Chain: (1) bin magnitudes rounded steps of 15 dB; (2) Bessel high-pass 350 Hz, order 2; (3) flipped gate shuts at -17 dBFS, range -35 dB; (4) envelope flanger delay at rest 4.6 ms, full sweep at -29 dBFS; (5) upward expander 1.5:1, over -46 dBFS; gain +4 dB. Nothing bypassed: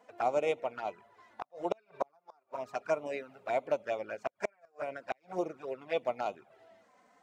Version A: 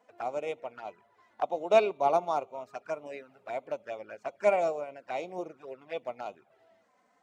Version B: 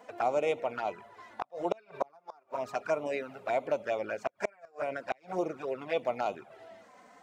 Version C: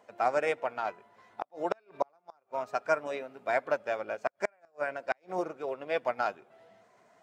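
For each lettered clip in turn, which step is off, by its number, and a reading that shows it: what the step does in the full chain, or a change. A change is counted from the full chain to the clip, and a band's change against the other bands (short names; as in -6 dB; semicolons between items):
3, momentary loudness spread change +7 LU; 5, momentary loudness spread change +3 LU; 4, 2 kHz band +5.5 dB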